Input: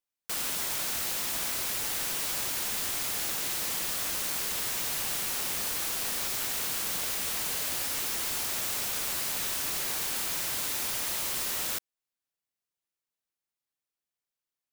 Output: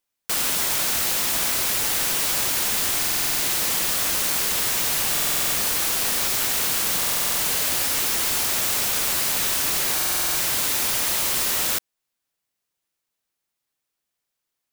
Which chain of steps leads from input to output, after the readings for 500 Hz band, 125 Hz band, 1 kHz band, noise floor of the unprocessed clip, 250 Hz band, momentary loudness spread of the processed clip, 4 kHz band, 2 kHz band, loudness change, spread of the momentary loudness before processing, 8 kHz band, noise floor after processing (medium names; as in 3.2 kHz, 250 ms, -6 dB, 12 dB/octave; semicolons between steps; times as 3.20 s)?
+9.0 dB, +9.0 dB, +9.0 dB, under -85 dBFS, +9.0 dB, 0 LU, +9.0 dB, +9.0 dB, +9.0 dB, 0 LU, +9.0 dB, -82 dBFS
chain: buffer glitch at 2.99/5.12/6.98/9.95 s, samples 2048, times 8; trim +9 dB